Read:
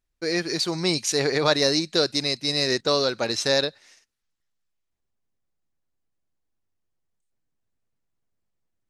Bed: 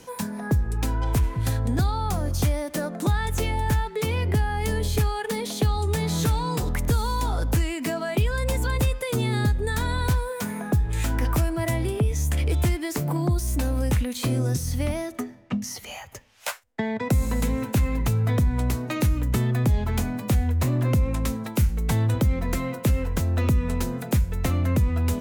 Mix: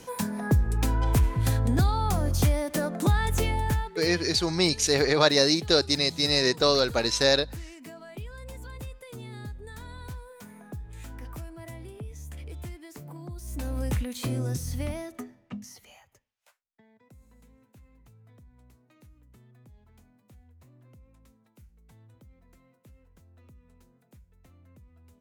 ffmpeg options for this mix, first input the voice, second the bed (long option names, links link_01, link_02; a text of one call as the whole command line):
ffmpeg -i stem1.wav -i stem2.wav -filter_complex "[0:a]adelay=3750,volume=0dB[link_01];[1:a]volume=11.5dB,afade=type=out:start_time=3.36:duration=0.9:silence=0.141254,afade=type=in:start_time=13.35:duration=0.45:silence=0.266073,afade=type=out:start_time=14.77:duration=1.58:silence=0.0398107[link_02];[link_01][link_02]amix=inputs=2:normalize=0" out.wav